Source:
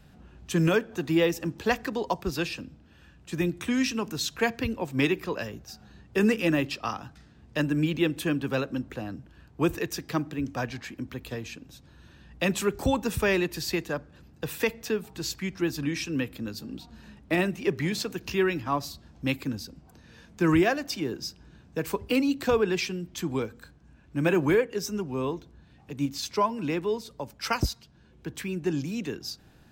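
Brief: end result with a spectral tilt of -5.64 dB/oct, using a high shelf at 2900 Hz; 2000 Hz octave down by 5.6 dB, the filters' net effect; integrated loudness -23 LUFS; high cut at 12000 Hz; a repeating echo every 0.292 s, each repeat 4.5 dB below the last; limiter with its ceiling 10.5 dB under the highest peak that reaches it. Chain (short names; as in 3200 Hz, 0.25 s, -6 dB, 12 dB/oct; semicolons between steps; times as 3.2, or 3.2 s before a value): LPF 12000 Hz; bell 2000 Hz -5 dB; high shelf 2900 Hz -5.5 dB; limiter -24 dBFS; feedback echo 0.292 s, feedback 60%, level -4.5 dB; gain +10 dB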